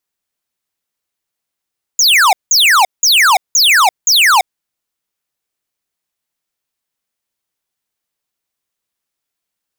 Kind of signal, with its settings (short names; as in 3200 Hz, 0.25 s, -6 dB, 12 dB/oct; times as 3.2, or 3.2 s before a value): burst of laser zaps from 7100 Hz, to 700 Hz, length 0.34 s square, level -8.5 dB, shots 5, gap 0.18 s